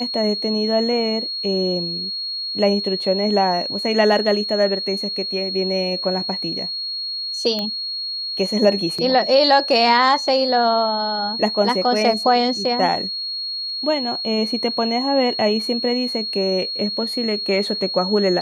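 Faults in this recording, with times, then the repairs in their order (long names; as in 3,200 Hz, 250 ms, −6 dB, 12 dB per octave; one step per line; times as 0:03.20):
whistle 4,300 Hz −24 dBFS
0:07.59: click −12 dBFS
0:08.98–0:08.99: drop-out 5.2 ms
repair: click removal
notch filter 4,300 Hz, Q 30
repair the gap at 0:08.98, 5.2 ms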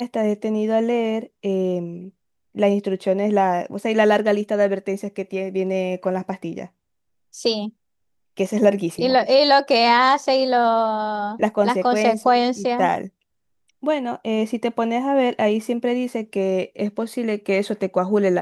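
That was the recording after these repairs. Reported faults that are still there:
none of them is left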